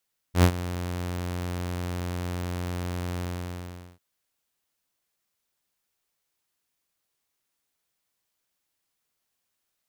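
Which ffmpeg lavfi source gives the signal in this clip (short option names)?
-f lavfi -i "aevalsrc='0.299*(2*mod(88.8*t,1)-1)':d=3.646:s=44100,afade=t=in:d=0.093,afade=t=out:st=0.093:d=0.077:silence=0.158,afade=t=out:st=2.87:d=0.776"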